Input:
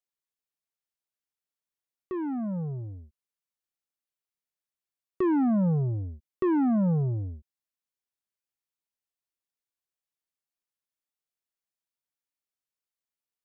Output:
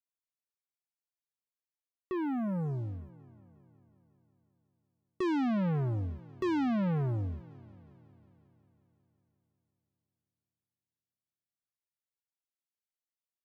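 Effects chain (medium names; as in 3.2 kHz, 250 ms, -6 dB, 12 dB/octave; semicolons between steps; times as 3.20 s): waveshaping leveller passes 2; on a send: multi-head delay 181 ms, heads second and third, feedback 46%, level -24 dB; on the sum: trim -6.5 dB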